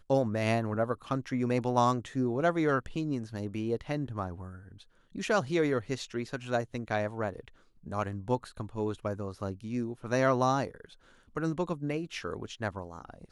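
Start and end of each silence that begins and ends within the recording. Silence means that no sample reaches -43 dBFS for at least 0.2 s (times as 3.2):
4.81–5.15
7.48–7.86
10.93–11.36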